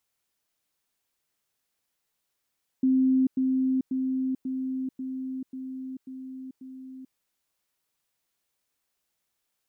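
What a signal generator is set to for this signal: level ladder 261 Hz -18.5 dBFS, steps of -3 dB, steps 8, 0.44 s 0.10 s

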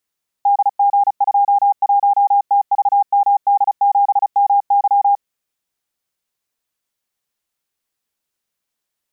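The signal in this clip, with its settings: Morse "DG21TVMD7MY" 35 wpm 807 Hz -9.5 dBFS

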